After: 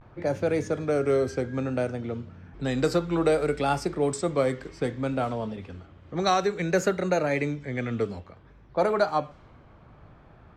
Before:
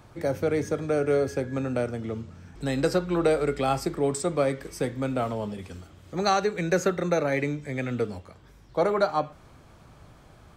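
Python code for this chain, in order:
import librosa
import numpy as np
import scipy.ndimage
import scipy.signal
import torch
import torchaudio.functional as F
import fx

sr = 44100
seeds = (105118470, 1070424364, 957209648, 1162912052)

y = fx.vibrato(x, sr, rate_hz=0.6, depth_cents=78.0)
y = fx.env_lowpass(y, sr, base_hz=2100.0, full_db=-19.5)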